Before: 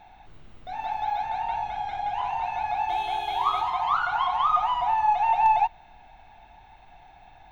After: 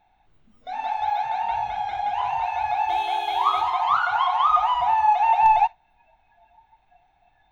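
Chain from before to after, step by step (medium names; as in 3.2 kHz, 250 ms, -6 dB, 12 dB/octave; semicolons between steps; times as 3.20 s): spectral noise reduction 16 dB; trim +3.5 dB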